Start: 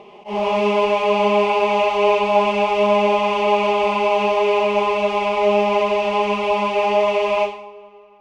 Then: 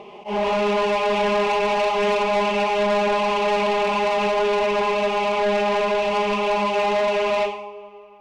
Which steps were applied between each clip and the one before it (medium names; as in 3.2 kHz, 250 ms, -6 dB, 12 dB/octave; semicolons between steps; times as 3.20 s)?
saturation -19 dBFS, distortion -10 dB; trim +2 dB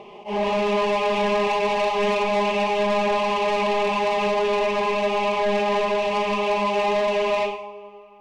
band-stop 1.4 kHz, Q 6.6; on a send at -11 dB: reverberation RT60 0.40 s, pre-delay 14 ms; on the sum: trim -1.5 dB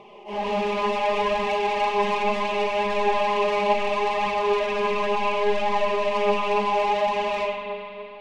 spring tank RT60 3.2 s, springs 41 ms, chirp 60 ms, DRR 1 dB; flange 0.7 Hz, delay 0.8 ms, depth 5.1 ms, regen +52%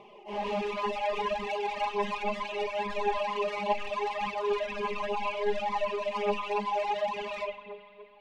reverb removal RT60 2 s; trim -5 dB